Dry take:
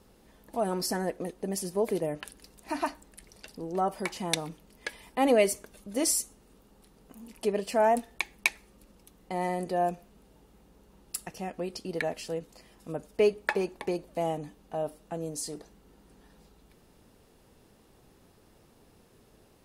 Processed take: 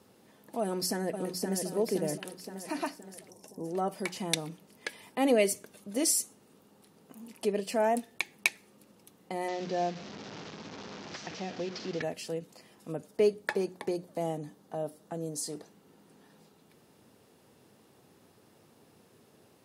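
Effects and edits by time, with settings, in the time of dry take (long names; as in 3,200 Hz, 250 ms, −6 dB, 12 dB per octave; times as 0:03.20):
0:00.61–0:01.65: delay throw 520 ms, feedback 50%, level −5.5 dB
0:03.30–0:03.65: gain on a spectral selection 1,100–5,200 Hz −15 dB
0:09.48–0:12.02: linear delta modulator 32 kbit/s, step −36.5 dBFS
0:13.08–0:15.49: parametric band 2,600 Hz −7 dB 0.47 octaves
whole clip: high-pass filter 100 Hz 24 dB per octave; mains-hum notches 60/120/180 Hz; dynamic equaliser 1,000 Hz, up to −6 dB, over −42 dBFS, Q 0.92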